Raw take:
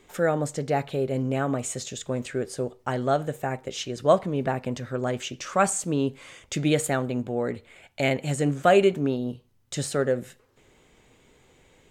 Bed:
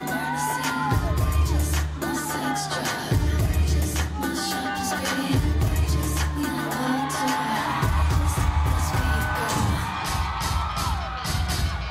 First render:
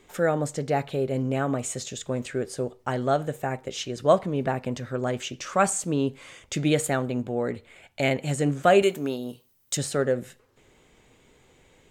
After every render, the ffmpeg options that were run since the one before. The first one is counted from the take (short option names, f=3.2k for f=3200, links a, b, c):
-filter_complex "[0:a]asettb=1/sr,asplit=3[a][b][c];[a]atrim=end=8.824[d];[b]atrim=start=8.82:end=9.77,asetpts=PTS-STARTPTS,afade=t=in:d=0.004:c=qsin,afade=t=out:st=0.946:d=0.004:c=qsin,aemphasis=mode=production:type=bsi[e];[c]atrim=start=9.766[f];[d][e]acrossfade=d=0.004:c1=hsin:c2=qsin[g];[g][f]acrossfade=d=0.004:c1=qsin:c2=hsin"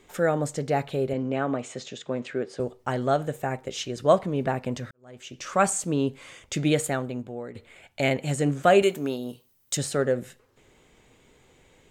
-filter_complex "[0:a]asettb=1/sr,asplit=3[a][b][c];[a]atrim=end=1.134[d];[b]atrim=start=1.13:end=2.6,asetpts=PTS-STARTPTS,afade=t=in:d=0.004:c=qsin,afade=t=out:st=1.466:d=0.004:c=qsin,highpass=170,lowpass=4.2k[e];[c]atrim=start=2.596[f];[d][e]acrossfade=d=0.004:c1=hsin:c2=qsin[g];[g][f]acrossfade=d=0.004:c1=qsin:c2=hsin,asplit=3[h][i][j];[h]atrim=end=4.91,asetpts=PTS-STARTPTS,afade=t=out:st=4.906:d=0.004:c=hsin[k];[i]atrim=start=4.91:end=7.55,asetpts=PTS-STARTPTS,afade=t=in:d=0.57:c=qua,afade=t=out:st=1.79:d=0.85:silence=0.237137[l];[j]atrim=start=7.55,asetpts=PTS-STARTPTS,afade=t=in:d=0.004:c=hsin:silence=0.237137[m];[k][l][m]concat=n=3:v=0:a=1"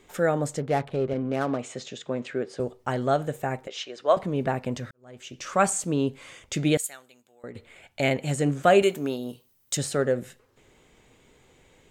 -filter_complex "[0:a]asettb=1/sr,asplit=3[a][b][c];[a]atrim=end=0.604[d];[b]atrim=start=0.6:end=1.58,asetpts=PTS-STARTPTS,afade=t=in:d=0.004:c=qsin,afade=t=out:st=0.976:d=0.004:c=qsin,adynamicsmooth=sensitivity=7.5:basefreq=750[e];[c]atrim=start=1.576[f];[d][e]acrossfade=d=0.004:c1=hsin:c2=qsin[g];[g][f]acrossfade=d=0.004:c1=qsin:c2=hsin,asettb=1/sr,asplit=3[h][i][j];[h]atrim=end=3.674[k];[i]atrim=start=3.67:end=4.17,asetpts=PTS-STARTPTS,afade=t=in:d=0.004:c=qsin,afade=t=out:st=0.496:d=0.004:c=qsin,highpass=530,lowpass=4.7k[l];[j]atrim=start=4.166[m];[k][l]acrossfade=d=0.004:c1=hsin:c2=qsin[n];[n][m]acrossfade=d=0.004:c1=qsin:c2=hsin,asettb=1/sr,asplit=3[o][p][q];[o]atrim=end=6.774[r];[p]atrim=start=6.77:end=7.44,asetpts=PTS-STARTPTS,afade=t=in:d=0.004:c=qsin,afade=t=out:st=0.666:d=0.004:c=qsin,aderivative[s];[q]atrim=start=7.436[t];[r][s]acrossfade=d=0.004:c1=hsin:c2=qsin[u];[u][t]acrossfade=d=0.004:c1=qsin:c2=hsin"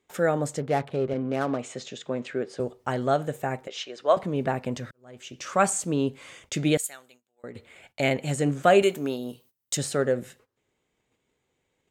-af "highpass=f=72:p=1,agate=range=-17dB:threshold=-55dB:ratio=16:detection=peak"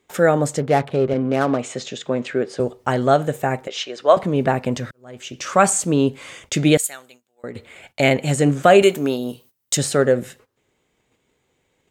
-af "volume=8dB,alimiter=limit=-2dB:level=0:latency=1"